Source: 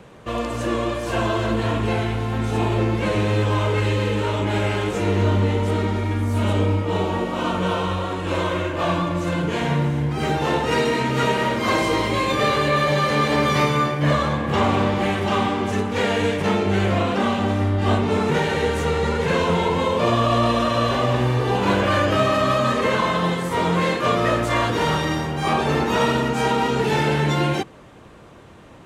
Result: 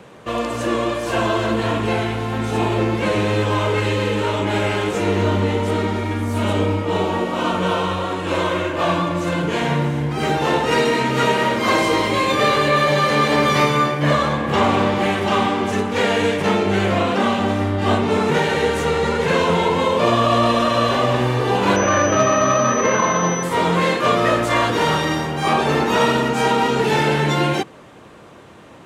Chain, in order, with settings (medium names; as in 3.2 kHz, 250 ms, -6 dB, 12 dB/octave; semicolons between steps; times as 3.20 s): high-pass 160 Hz 6 dB/octave; 21.76–23.43 s: class-D stage that switches slowly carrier 6 kHz; trim +3.5 dB